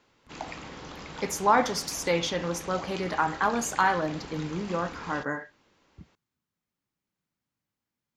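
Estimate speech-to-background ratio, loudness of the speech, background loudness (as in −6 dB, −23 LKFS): 13.5 dB, −28.0 LKFS, −41.5 LKFS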